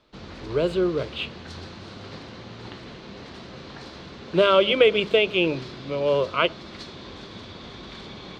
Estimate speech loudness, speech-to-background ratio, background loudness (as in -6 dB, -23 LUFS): -22.5 LUFS, 17.5 dB, -40.0 LUFS